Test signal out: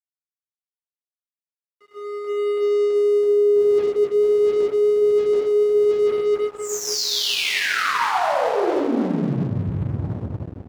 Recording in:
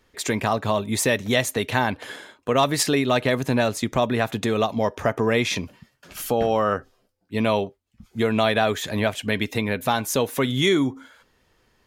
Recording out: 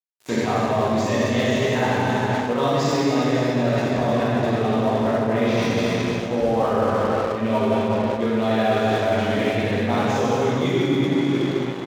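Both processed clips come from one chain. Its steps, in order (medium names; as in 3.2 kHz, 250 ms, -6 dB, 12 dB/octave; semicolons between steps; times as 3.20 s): local Wiener filter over 9 samples; gate with hold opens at -49 dBFS; resampled via 16 kHz; tilt EQ -2.5 dB/octave; early reflections 17 ms -5.5 dB, 59 ms -7 dB, 80 ms -4 dB; plate-style reverb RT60 3.3 s, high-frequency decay 0.95×, DRR -9.5 dB; dynamic bell 4.7 kHz, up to +4 dB, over -36 dBFS, Q 1.5; crossover distortion -26 dBFS; reverse; compression 6:1, threshold -14 dBFS; reverse; high-pass 190 Hz 6 dB/octave; trim -1.5 dB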